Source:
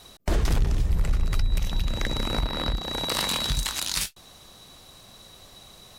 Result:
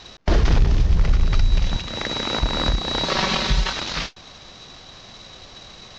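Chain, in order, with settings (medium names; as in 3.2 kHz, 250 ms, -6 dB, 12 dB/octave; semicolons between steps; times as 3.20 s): CVSD coder 32 kbps; 1.76–2.42 s: high-pass 310 Hz 6 dB/octave; 3.04–3.73 s: comb 5.3 ms, depth 75%; trim +6.5 dB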